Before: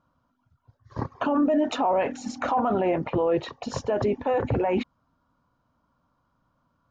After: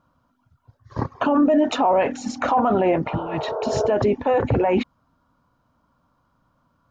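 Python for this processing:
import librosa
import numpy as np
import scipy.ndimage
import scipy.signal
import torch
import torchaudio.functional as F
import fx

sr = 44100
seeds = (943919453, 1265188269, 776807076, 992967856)

y = fx.spec_repair(x, sr, seeds[0], start_s=3.12, length_s=0.73, low_hz=330.0, high_hz=1600.0, source='both')
y = y * librosa.db_to_amplitude(5.0)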